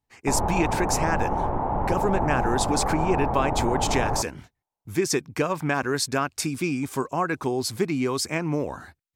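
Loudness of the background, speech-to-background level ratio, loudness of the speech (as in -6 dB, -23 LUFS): -27.0 LUFS, 0.5 dB, -26.5 LUFS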